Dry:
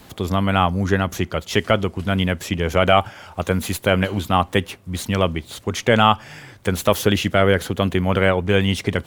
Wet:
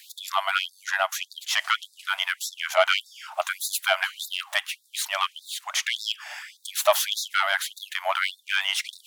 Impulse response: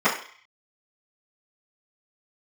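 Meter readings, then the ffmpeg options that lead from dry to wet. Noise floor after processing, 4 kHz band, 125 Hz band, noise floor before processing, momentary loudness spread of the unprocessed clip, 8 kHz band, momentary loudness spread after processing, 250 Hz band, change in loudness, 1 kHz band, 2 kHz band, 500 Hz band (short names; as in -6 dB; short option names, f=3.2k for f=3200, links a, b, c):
-61 dBFS, 0.0 dB, under -40 dB, -46 dBFS, 9 LU, +2.5 dB, 9 LU, under -40 dB, -6.0 dB, -7.0 dB, -1.5 dB, -10.5 dB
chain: -af "asoftclip=type=tanh:threshold=-7dB,afftfilt=real='re*gte(b*sr/1024,570*pow(3600/570,0.5+0.5*sin(2*PI*1.7*pts/sr)))':imag='im*gte(b*sr/1024,570*pow(3600/570,0.5+0.5*sin(2*PI*1.7*pts/sr)))':win_size=1024:overlap=0.75,volume=2.5dB"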